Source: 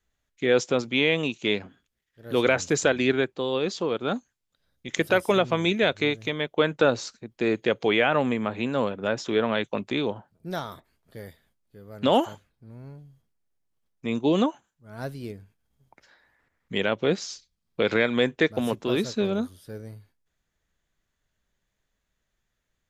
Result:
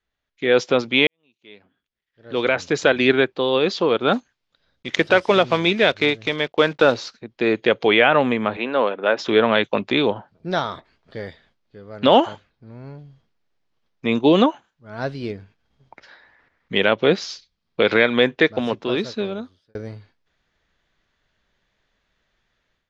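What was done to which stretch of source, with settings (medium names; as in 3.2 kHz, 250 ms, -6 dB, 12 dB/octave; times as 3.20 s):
1.07–3.11 s: fade in quadratic
4.13–7.22 s: block-companded coder 5-bit
8.57–9.19 s: band-pass 340–3400 Hz
18.32–19.75 s: fade out
whole clip: low-pass 5 kHz 24 dB/octave; bass shelf 240 Hz -7 dB; level rider gain up to 11.5 dB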